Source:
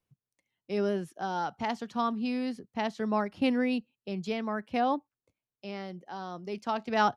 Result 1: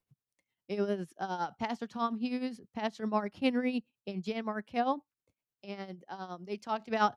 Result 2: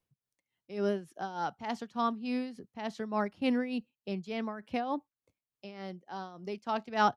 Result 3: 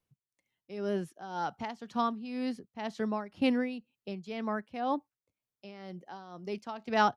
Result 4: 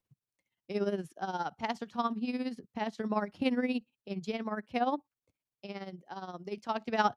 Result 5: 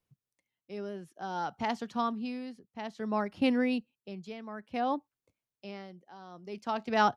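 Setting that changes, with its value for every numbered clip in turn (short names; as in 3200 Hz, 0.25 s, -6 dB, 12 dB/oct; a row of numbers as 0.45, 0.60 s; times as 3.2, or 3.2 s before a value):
tremolo, rate: 9.8, 3.4, 2, 17, 0.57 Hz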